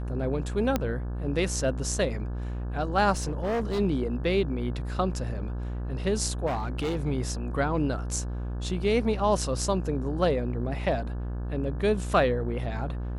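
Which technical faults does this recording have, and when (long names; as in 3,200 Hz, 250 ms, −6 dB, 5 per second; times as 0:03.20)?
mains buzz 60 Hz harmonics 29 −32 dBFS
0:00.76: click −11 dBFS
0:03.12–0:03.80: clipping −24.5 dBFS
0:06.46–0:06.97: clipping −25 dBFS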